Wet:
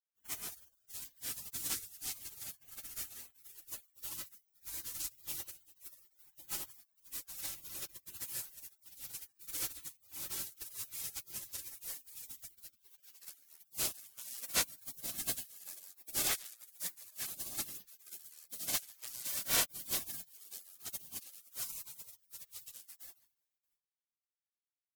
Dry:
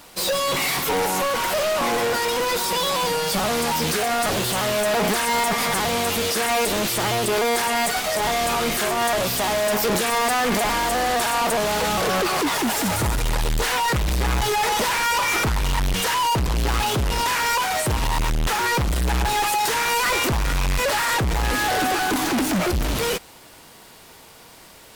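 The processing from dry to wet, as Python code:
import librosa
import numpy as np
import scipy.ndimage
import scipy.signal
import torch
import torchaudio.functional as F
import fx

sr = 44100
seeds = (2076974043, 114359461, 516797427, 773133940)

y = fx.low_shelf(x, sr, hz=390.0, db=-10.5)
y = fx.echo_multitap(y, sr, ms=(144, 634), db=(-8.0, -19.0))
y = fx.spec_gate(y, sr, threshold_db=-30, keep='weak')
y = fx.quant_companded(y, sr, bits=6)
y = fx.upward_expand(y, sr, threshold_db=-51.0, expansion=2.5)
y = y * librosa.db_to_amplitude(5.5)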